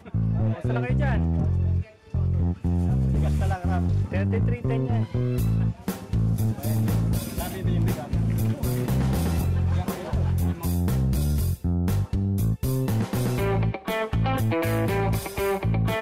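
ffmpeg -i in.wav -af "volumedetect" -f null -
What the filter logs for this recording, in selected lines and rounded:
mean_volume: -23.8 dB
max_volume: -17.2 dB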